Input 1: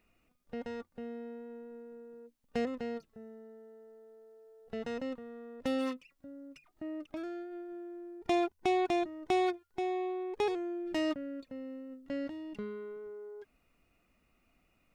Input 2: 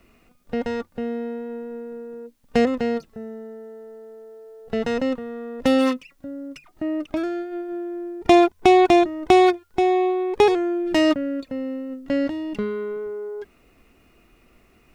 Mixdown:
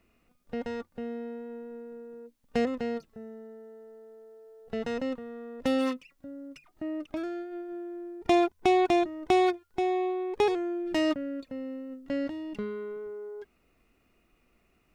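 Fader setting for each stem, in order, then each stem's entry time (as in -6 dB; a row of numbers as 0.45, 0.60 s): -3.0, -12.5 dB; 0.00, 0.00 s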